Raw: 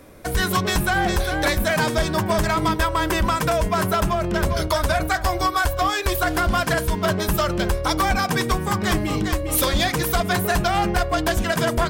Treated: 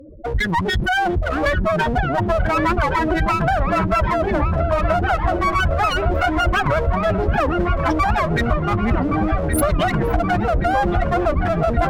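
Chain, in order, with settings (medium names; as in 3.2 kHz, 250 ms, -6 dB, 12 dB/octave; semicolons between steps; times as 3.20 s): spectral contrast enhancement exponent 4; one-sided clip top -34 dBFS; on a send: feedback echo behind a low-pass 1122 ms, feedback 59%, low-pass 2.5 kHz, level -6 dB; on the sum: warped record 78 rpm, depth 250 cents; trim +6 dB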